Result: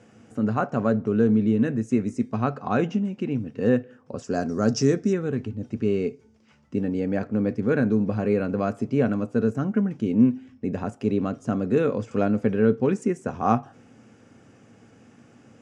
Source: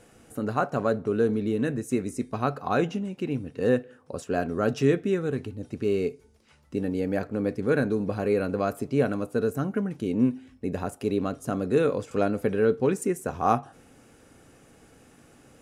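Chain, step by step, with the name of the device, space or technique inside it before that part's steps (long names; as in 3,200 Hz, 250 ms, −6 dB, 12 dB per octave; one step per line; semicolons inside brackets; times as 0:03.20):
car door speaker (loudspeaker in its box 95–6,800 Hz, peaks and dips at 110 Hz +9 dB, 220 Hz +9 dB, 4,000 Hz −7 dB)
0:04.24–0:05.13: high shelf with overshoot 4,000 Hz +9 dB, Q 3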